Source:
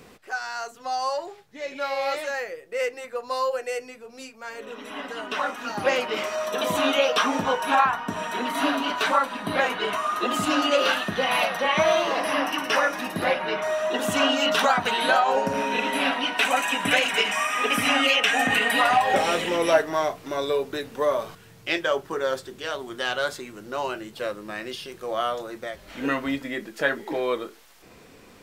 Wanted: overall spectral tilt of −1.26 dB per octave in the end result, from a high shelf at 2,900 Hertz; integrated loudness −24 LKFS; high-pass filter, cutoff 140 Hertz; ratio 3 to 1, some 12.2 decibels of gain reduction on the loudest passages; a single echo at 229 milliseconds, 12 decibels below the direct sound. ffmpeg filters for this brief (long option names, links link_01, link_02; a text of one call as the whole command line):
ffmpeg -i in.wav -af "highpass=140,highshelf=frequency=2900:gain=-6.5,acompressor=threshold=-32dB:ratio=3,aecho=1:1:229:0.251,volume=9.5dB" out.wav